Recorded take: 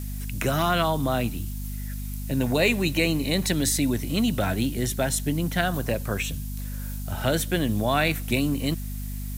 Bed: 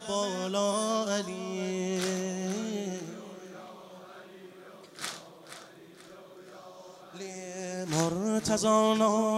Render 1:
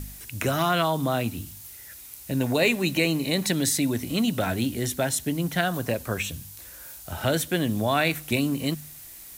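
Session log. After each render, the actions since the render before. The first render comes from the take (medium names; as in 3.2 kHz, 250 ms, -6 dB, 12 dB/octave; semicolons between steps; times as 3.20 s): de-hum 50 Hz, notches 5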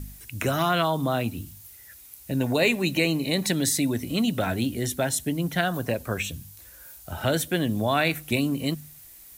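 noise reduction 6 dB, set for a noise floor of -44 dBFS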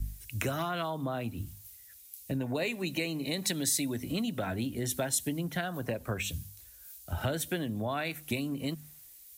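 compression 10:1, threshold -29 dBFS, peak gain reduction 12.5 dB; three bands expanded up and down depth 70%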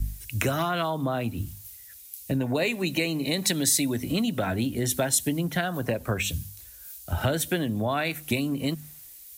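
trim +6.5 dB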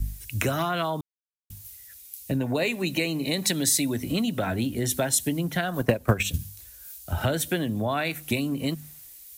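1.01–1.50 s: mute; 5.68–6.39 s: transient shaper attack +9 dB, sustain -6 dB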